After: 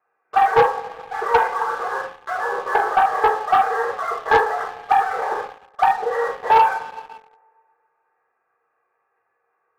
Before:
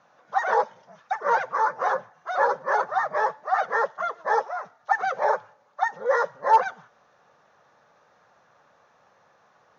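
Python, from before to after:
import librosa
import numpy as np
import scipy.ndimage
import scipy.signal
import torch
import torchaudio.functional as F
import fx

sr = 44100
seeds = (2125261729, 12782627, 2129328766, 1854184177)

y = scipy.signal.sosfilt(scipy.signal.cheby1(10, 1.0, 2700.0, 'lowpass', fs=sr, output='sos'), x)
y = fx.low_shelf(y, sr, hz=170.0, db=-11.5)
y = fx.hum_notches(y, sr, base_hz=60, count=9)
y = y + 0.78 * np.pad(y, (int(2.5 * sr / 1000.0), 0))[:len(y)]
y = fx.room_flutter(y, sr, wall_m=5.5, rt60_s=0.24)
y = fx.level_steps(y, sr, step_db=18)
y = fx.rev_double_slope(y, sr, seeds[0], early_s=0.42, late_s=2.1, knee_db=-18, drr_db=-4.5)
y = fx.leveller(y, sr, passes=2)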